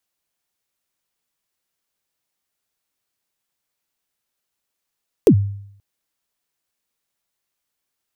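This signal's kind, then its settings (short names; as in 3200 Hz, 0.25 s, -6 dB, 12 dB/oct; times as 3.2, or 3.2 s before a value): kick drum length 0.53 s, from 500 Hz, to 100 Hz, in 77 ms, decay 0.69 s, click on, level -4.5 dB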